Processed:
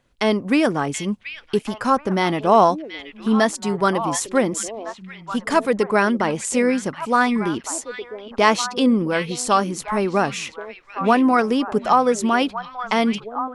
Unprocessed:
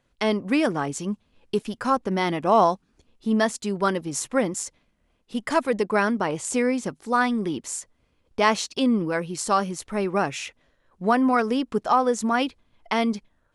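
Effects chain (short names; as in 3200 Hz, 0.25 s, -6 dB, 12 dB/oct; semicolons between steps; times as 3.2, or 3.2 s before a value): delay with a stepping band-pass 0.729 s, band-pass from 2800 Hz, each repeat -1.4 oct, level -6 dB; gain +4 dB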